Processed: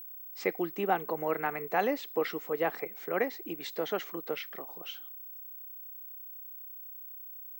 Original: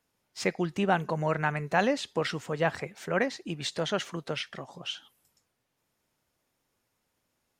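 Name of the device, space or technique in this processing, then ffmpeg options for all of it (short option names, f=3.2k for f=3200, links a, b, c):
old television with a line whistle: -af "highpass=f=190:w=0.5412,highpass=f=190:w=1.3066,equalizer=f=320:t=q:w=4:g=8,equalizer=f=450:t=q:w=4:g=10,equalizer=f=770:t=q:w=4:g=7,equalizer=f=1.2k:t=q:w=4:g=6,equalizer=f=2.1k:t=q:w=4:g=7,equalizer=f=6.8k:t=q:w=4:g=-3,lowpass=f=8.6k:w=0.5412,lowpass=f=8.6k:w=1.3066,aeval=exprs='val(0)+0.02*sin(2*PI*15734*n/s)':c=same,volume=-8.5dB"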